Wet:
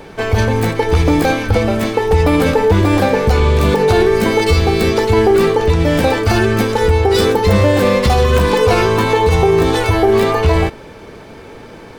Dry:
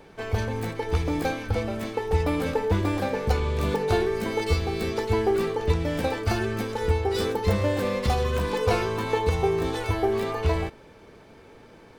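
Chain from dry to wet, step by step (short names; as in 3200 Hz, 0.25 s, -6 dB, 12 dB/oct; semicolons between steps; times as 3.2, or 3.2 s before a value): maximiser +16.5 dB; gain -2 dB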